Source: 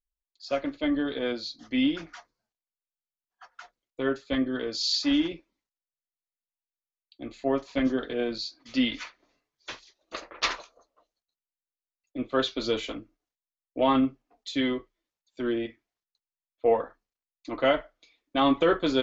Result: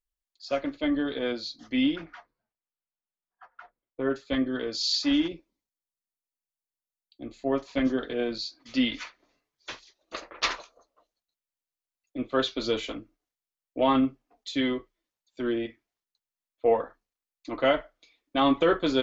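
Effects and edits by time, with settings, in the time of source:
1.95–4.09 s: low-pass 2.8 kHz -> 1.5 kHz
5.28–7.52 s: peaking EQ 1.9 kHz -7 dB 2.4 oct

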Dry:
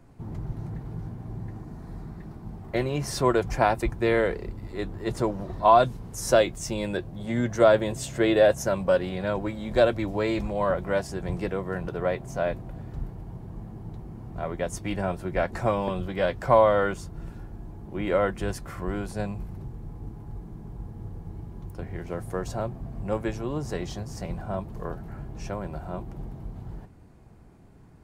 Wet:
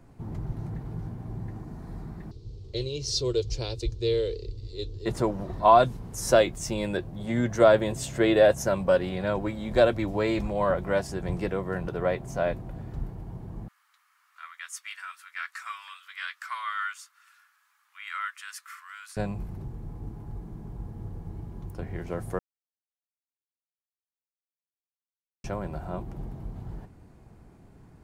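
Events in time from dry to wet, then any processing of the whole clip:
2.31–5.06 s: FFT filter 120 Hz 0 dB, 190 Hz -21 dB, 460 Hz 0 dB, 700 Hz -24 dB, 1.1 kHz -21 dB, 1.8 kHz -23 dB, 2.8 kHz -3 dB, 4.2 kHz +10 dB, 6.7 kHz +2 dB, 11 kHz -17 dB
13.68–19.17 s: Chebyshev high-pass 1.2 kHz, order 5
22.39–25.44 s: mute

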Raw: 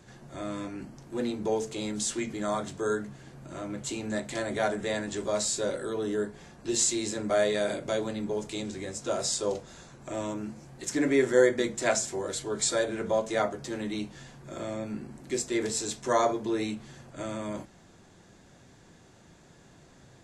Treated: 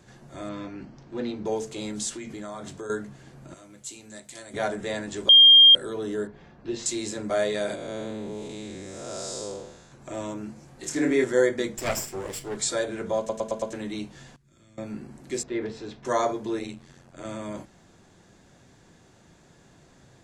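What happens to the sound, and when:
0.49–1.46 s: low-pass 5.5 kHz 24 dB/octave
2.09–2.90 s: compression, threshold -33 dBFS
3.54–4.54 s: pre-emphasis filter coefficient 0.8
5.29–5.75 s: bleep 3.21 kHz -9 dBFS
6.27–6.86 s: distance through air 230 m
7.75–9.92 s: spectral blur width 256 ms
10.65–11.24 s: flutter echo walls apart 4.5 m, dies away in 0.25 s
11.78–12.57 s: comb filter that takes the minimum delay 0.38 ms
13.18 s: stutter in place 0.11 s, 5 plays
14.36–14.78 s: amplifier tone stack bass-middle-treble 6-0-2
15.43–16.05 s: distance through air 310 m
16.59–17.25 s: AM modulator 88 Hz, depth 75%

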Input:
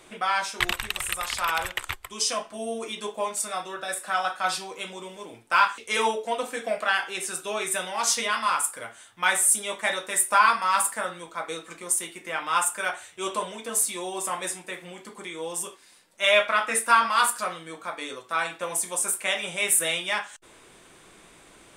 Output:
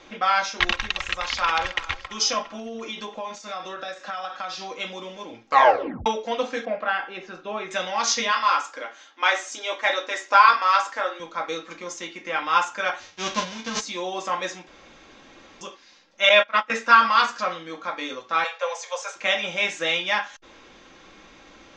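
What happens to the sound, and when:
1.22–1.84 s: echo throw 340 ms, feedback 55%, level -17.5 dB
2.45–4.77 s: compression, threshold -32 dBFS
5.43 s: tape stop 0.63 s
6.65–7.71 s: tape spacing loss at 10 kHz 33 dB
8.31–11.20 s: brick-wall FIR high-pass 240 Hz
12.99–13.79 s: formants flattened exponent 0.3
14.67–15.61 s: room tone
16.29–16.70 s: gate -24 dBFS, range -20 dB
18.44–19.16 s: steep high-pass 440 Hz 96 dB/octave
whole clip: steep low-pass 6.5 kHz 72 dB/octave; comb 3.7 ms, depth 44%; trim +3 dB

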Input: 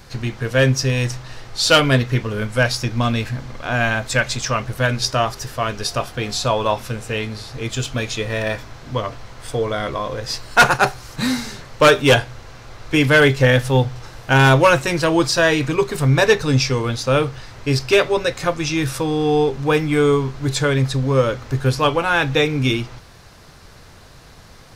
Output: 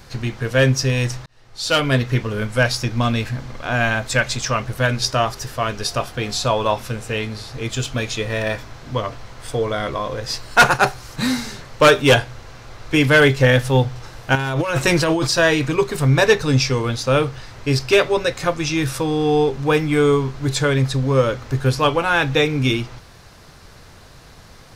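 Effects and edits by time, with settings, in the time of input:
1.26–2.11 s: fade in
14.35–15.27 s: compressor with a negative ratio -19 dBFS

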